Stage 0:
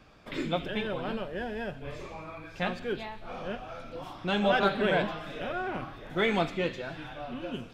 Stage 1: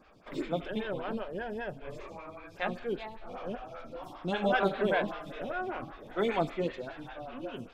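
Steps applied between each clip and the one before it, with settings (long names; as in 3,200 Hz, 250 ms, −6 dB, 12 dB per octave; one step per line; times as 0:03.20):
tape wow and flutter 23 cents
phaser with staggered stages 5.1 Hz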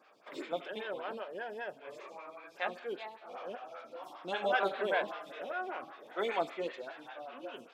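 high-pass filter 450 Hz 12 dB per octave
level −1.5 dB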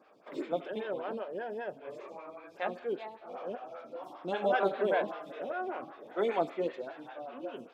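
tilt shelving filter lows +6.5 dB, about 820 Hz
level +1.5 dB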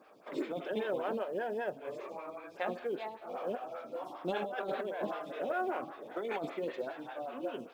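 compressor whose output falls as the input rises −34 dBFS, ratio −1
log-companded quantiser 8 bits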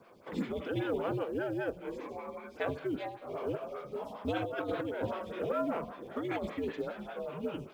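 frequency shifter −95 Hz
level +1.5 dB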